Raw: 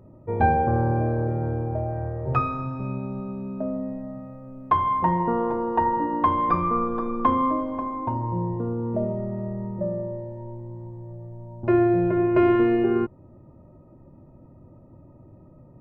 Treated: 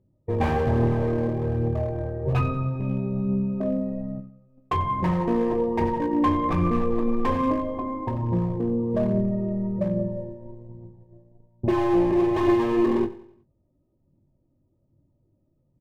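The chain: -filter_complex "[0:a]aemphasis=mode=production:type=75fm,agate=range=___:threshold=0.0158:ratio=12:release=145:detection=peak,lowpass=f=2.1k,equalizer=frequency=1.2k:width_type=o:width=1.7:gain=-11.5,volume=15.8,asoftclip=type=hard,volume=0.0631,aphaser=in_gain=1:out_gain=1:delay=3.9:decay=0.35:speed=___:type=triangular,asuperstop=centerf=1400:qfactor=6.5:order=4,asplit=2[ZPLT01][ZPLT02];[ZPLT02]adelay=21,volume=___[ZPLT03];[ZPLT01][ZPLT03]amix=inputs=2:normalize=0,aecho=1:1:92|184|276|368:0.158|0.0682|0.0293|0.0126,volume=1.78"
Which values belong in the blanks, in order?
0.0708, 1.2, 0.398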